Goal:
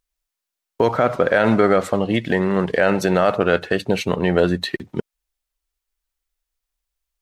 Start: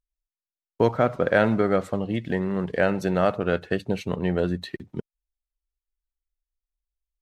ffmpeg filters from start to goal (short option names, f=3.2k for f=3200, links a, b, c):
-af "lowshelf=f=290:g=-9,alimiter=level_in=16dB:limit=-1dB:release=50:level=0:latency=1,volume=-4dB"